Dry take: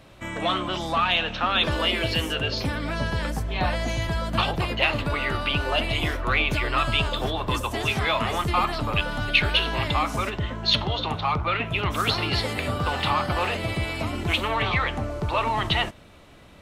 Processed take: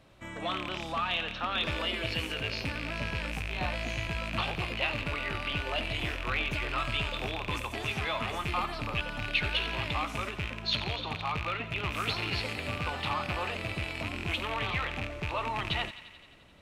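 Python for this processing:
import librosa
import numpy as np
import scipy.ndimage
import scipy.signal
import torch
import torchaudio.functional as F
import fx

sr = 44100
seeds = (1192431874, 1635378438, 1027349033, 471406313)

y = fx.rattle_buzz(x, sr, strikes_db=-29.0, level_db=-14.0)
y = fx.high_shelf(y, sr, hz=12000.0, db=-4.5)
y = fx.echo_wet_highpass(y, sr, ms=87, feedback_pct=71, hz=1500.0, wet_db=-12.5)
y = F.gain(torch.from_numpy(y), -9.0).numpy()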